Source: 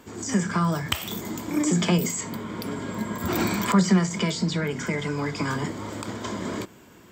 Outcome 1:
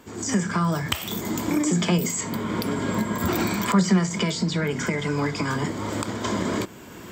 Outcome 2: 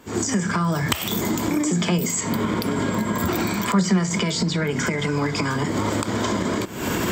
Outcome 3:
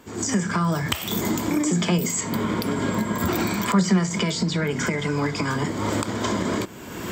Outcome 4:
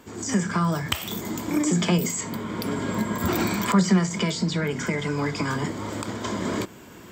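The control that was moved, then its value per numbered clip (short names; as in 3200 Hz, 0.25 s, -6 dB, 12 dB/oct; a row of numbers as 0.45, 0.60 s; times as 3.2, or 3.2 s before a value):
recorder AGC, rising by: 13, 84, 33, 5.2 dB/s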